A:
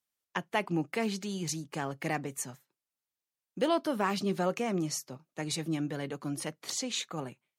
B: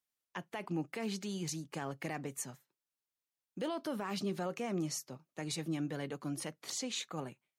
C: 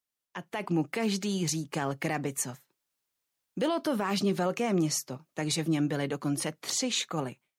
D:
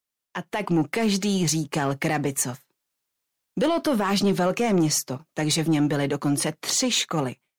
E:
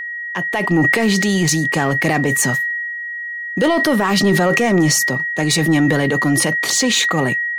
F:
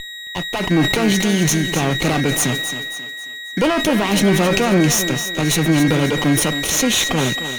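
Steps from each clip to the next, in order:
peak limiter -24.5 dBFS, peak gain reduction 10.5 dB; trim -3.5 dB
level rider gain up to 9 dB
waveshaping leveller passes 1; trim +4.5 dB
whistle 1.9 kHz -30 dBFS; decay stretcher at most 21 dB/s; trim +6 dB
comb filter that takes the minimum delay 0.31 ms; on a send: thinning echo 269 ms, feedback 42%, high-pass 190 Hz, level -9.5 dB

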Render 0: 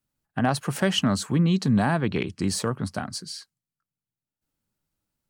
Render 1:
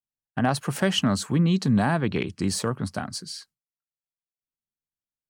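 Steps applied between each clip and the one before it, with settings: gate with hold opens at -43 dBFS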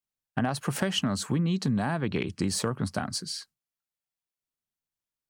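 compression, threshold -25 dBFS, peak gain reduction 8.5 dB; trim +1.5 dB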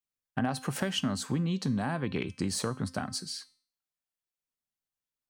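feedback comb 260 Hz, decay 0.46 s, harmonics all, mix 60%; trim +4 dB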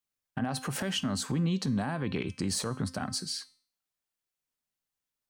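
peak limiter -24.5 dBFS, peak gain reduction 9.5 dB; trim +3 dB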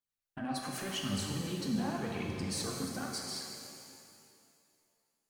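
phaser 0.86 Hz, delay 4.5 ms, feedback 61%; pitch-shifted reverb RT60 2.3 s, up +7 st, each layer -8 dB, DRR 0 dB; trim -9 dB

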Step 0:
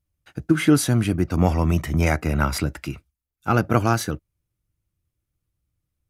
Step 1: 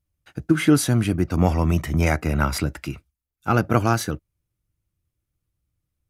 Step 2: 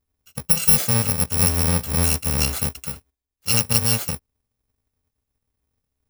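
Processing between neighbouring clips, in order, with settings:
no audible change
bit-reversed sample order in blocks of 128 samples

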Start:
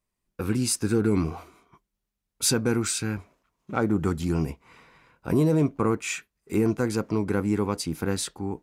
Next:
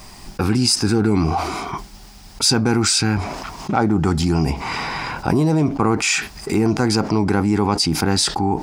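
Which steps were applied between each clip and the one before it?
graphic EQ with 31 bands 500 Hz -7 dB, 800 Hz +10 dB, 5 kHz +10 dB, 12.5 kHz -11 dB; level flattener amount 70%; trim +2 dB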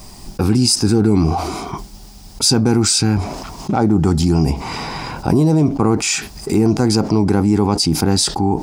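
peaking EQ 1.8 kHz -9 dB 2 oct; trim +4 dB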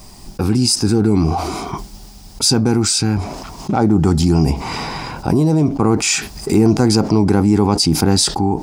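level rider; trim -2 dB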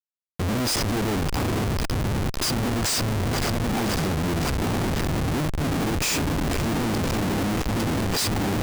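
echo with a slow build-up 111 ms, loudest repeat 8, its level -15.5 dB; harmonic tremolo 1.9 Hz, depth 100%, crossover 1.8 kHz; Schmitt trigger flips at -23.5 dBFS; trim -5 dB

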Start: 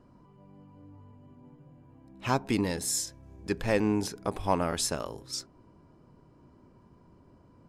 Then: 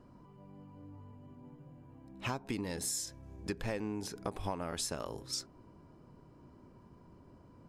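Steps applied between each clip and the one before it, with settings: compression 12:1, threshold -33 dBFS, peak gain reduction 14 dB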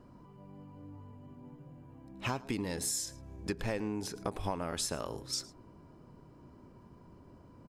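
delay 109 ms -20.5 dB; trim +2 dB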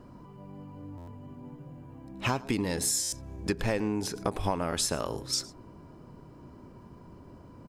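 buffer glitch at 0.97/3.02 s, samples 512, times 8; trim +6 dB

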